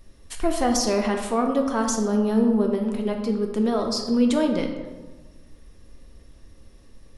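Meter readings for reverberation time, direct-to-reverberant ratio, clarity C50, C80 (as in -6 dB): 1.2 s, 2.5 dB, 5.5 dB, 7.5 dB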